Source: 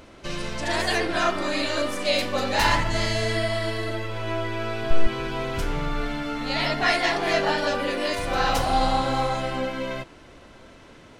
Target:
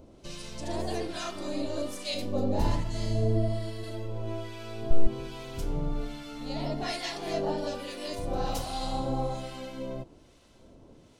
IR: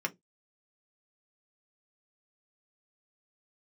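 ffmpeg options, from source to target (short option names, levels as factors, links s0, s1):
-filter_complex "[0:a]asettb=1/sr,asplit=3[s0][s1][s2];[s0]atrim=end=2.144[s3];[s1]atrim=start=2.14:end=3.84,asetpts=PTS-STARTPTS,afade=t=in:d=0.004:c=qsin,afade=t=out:st=1.696:d=0.004:c=qsin,tiltshelf=f=750:g=6[s4];[s2]atrim=start=3.836[s5];[s3][s4]acrossfade=d=0.004:c1=hsin:c2=qsin[s6];[s6][s5]acrossfade=d=0.004:c1=qsin:c2=hsin,acrossover=split=1100[s7][s8];[s7]aeval=exprs='val(0)*(1-0.7/2+0.7/2*cos(2*PI*1.2*n/s))':c=same[s9];[s8]aeval=exprs='val(0)*(1-0.7/2-0.7/2*cos(2*PI*1.2*n/s))':c=same[s10];[s9][s10]amix=inputs=2:normalize=0,equalizer=f=1700:t=o:w=1.8:g=-14,volume=0.841"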